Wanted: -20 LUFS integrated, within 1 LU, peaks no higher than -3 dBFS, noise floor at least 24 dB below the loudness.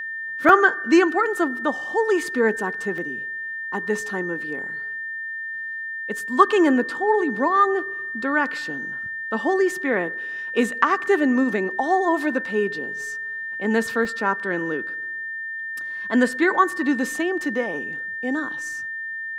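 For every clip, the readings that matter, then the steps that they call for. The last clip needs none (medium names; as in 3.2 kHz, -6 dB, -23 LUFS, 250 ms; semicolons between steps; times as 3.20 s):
dropouts 4; longest dropout 1.1 ms; steady tone 1.8 kHz; tone level -28 dBFS; loudness -22.5 LUFS; peak level -1.5 dBFS; loudness target -20.0 LUFS
-> interpolate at 0.49/2.98/11.06/14.05 s, 1.1 ms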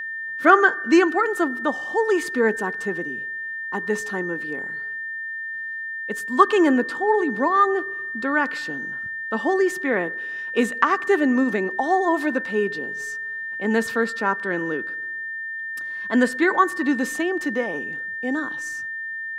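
dropouts 0; steady tone 1.8 kHz; tone level -28 dBFS
-> band-stop 1.8 kHz, Q 30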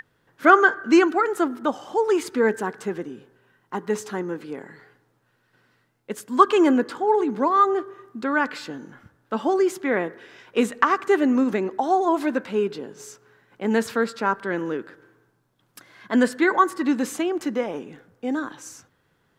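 steady tone not found; loudness -22.5 LUFS; peak level -1.5 dBFS; loudness target -20.0 LUFS
-> trim +2.5 dB; peak limiter -3 dBFS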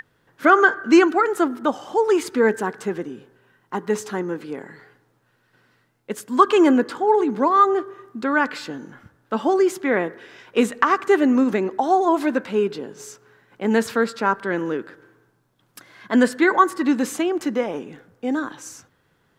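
loudness -20.0 LUFS; peak level -3.0 dBFS; noise floor -65 dBFS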